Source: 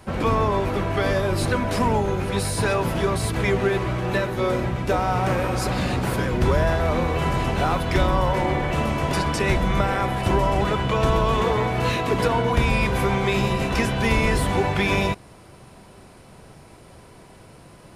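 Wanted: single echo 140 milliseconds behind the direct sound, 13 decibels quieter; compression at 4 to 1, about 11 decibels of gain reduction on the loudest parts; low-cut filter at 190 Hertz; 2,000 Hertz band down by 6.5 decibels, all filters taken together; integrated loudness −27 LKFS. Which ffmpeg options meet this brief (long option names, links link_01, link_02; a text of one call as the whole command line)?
ffmpeg -i in.wav -af "highpass=190,equalizer=frequency=2000:width_type=o:gain=-8.5,acompressor=threshold=-32dB:ratio=4,aecho=1:1:140:0.224,volume=7dB" out.wav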